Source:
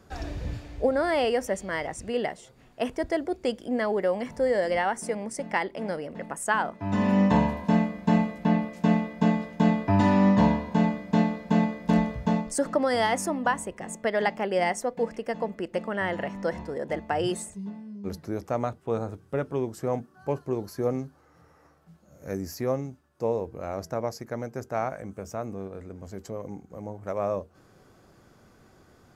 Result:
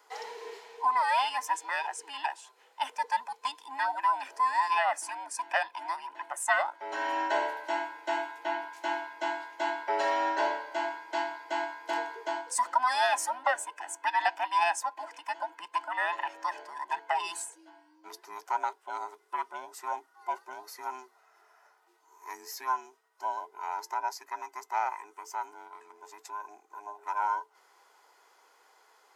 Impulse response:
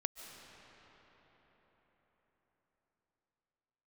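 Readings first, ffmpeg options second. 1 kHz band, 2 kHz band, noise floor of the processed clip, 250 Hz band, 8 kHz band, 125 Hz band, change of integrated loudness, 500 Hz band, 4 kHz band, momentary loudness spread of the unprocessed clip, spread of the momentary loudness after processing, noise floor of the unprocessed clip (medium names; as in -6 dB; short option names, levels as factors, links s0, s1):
+2.5 dB, +0.5 dB, -65 dBFS, -24.0 dB, 0.0 dB, under -40 dB, -4.5 dB, -10.5 dB, 0.0 dB, 13 LU, 15 LU, -58 dBFS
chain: -af "afftfilt=real='real(if(between(b,1,1008),(2*floor((b-1)/24)+1)*24-b,b),0)':imag='imag(if(between(b,1,1008),(2*floor((b-1)/24)+1)*24-b,b),0)*if(between(b,1,1008),-1,1)':win_size=2048:overlap=0.75,highpass=f=620:w=0.5412,highpass=f=620:w=1.3066,equalizer=f=1200:w=5.2:g=-2.5"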